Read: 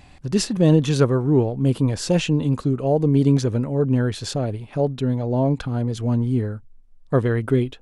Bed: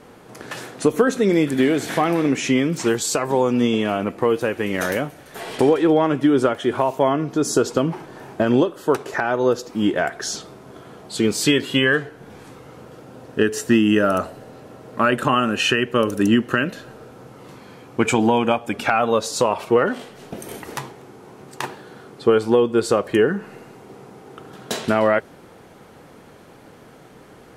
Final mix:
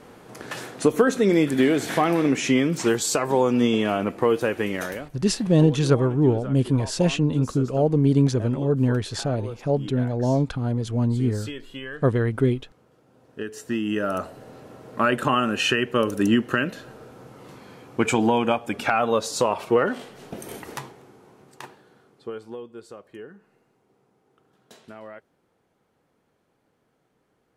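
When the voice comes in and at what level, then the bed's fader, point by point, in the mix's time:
4.90 s, -1.5 dB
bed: 4.63 s -1.5 dB
5.26 s -18.5 dB
13.01 s -18.5 dB
14.50 s -3 dB
20.58 s -3 dB
22.91 s -24 dB

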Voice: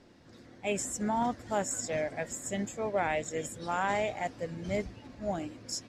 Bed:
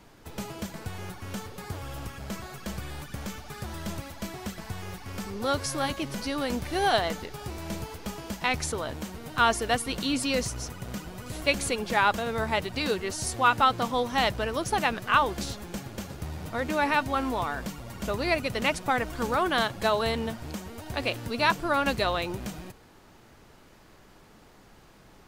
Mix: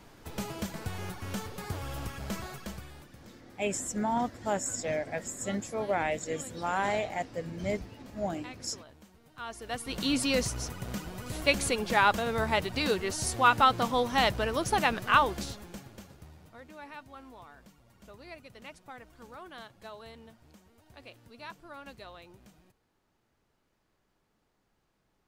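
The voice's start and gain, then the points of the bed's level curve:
2.95 s, +0.5 dB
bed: 2.48 s 0 dB
3.30 s -19.5 dB
9.42 s -19.5 dB
10.06 s -0.5 dB
15.19 s -0.5 dB
16.70 s -21 dB

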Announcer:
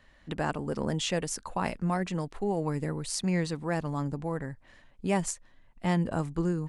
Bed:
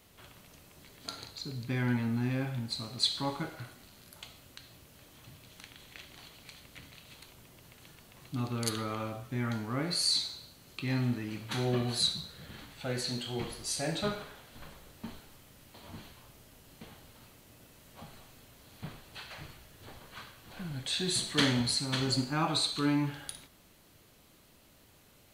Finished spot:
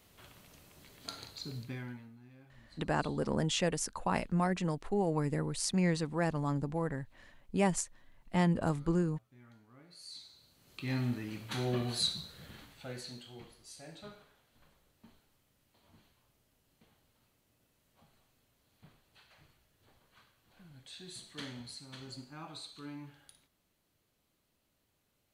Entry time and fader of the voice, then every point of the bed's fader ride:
2.50 s, -1.5 dB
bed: 1.57 s -2.5 dB
2.18 s -25.5 dB
9.89 s -25.5 dB
10.89 s -3 dB
12.45 s -3 dB
13.55 s -17 dB

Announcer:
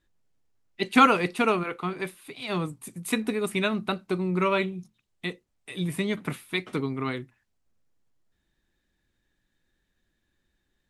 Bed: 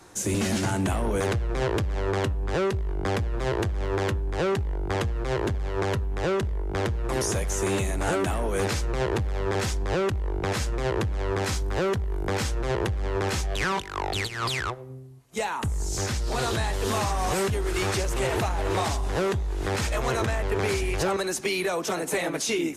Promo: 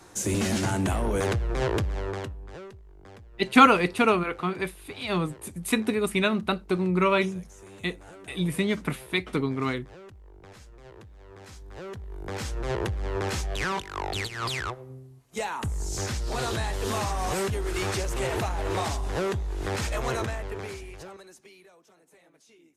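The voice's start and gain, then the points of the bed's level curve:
2.60 s, +2.0 dB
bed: 1.86 s -0.5 dB
2.83 s -22 dB
11.29 s -22 dB
12.67 s -2.5 dB
20.15 s -2.5 dB
21.90 s -32 dB

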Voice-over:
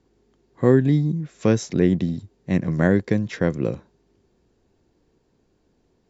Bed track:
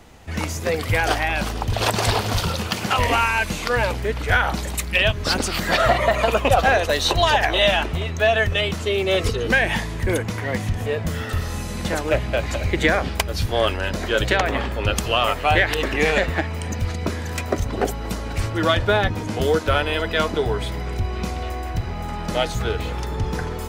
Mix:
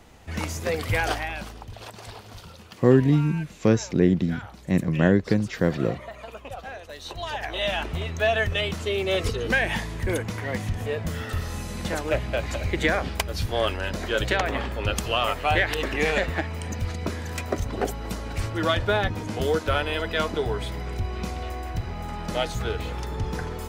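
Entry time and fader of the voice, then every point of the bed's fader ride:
2.20 s, -1.0 dB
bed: 1.02 s -4 dB
1.90 s -21 dB
6.85 s -21 dB
7.98 s -4.5 dB

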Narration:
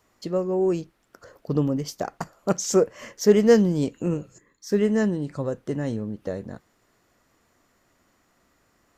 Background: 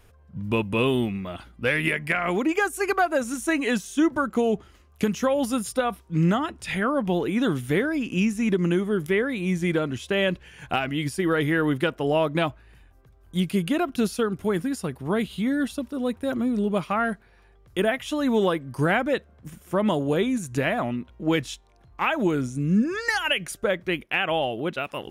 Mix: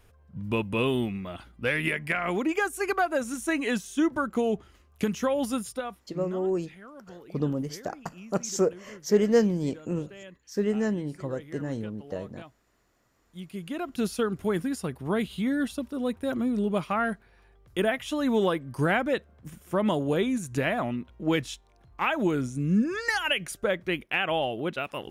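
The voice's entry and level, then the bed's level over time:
5.85 s, -5.0 dB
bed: 5.54 s -3.5 dB
6.48 s -23 dB
13.08 s -23 dB
14.12 s -2.5 dB

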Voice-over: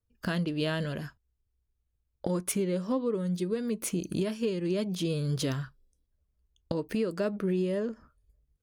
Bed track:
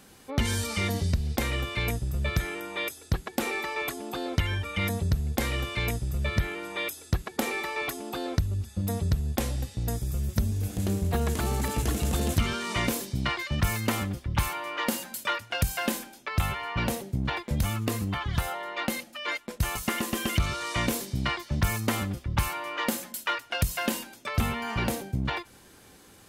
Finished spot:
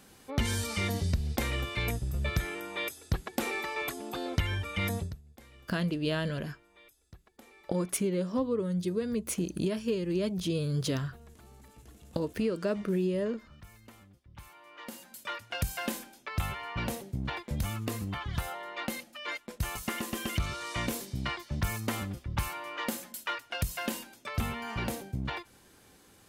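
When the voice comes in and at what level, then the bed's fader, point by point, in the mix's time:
5.45 s, -0.5 dB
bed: 5.00 s -3 dB
5.22 s -26.5 dB
14.21 s -26.5 dB
15.51 s -5.5 dB

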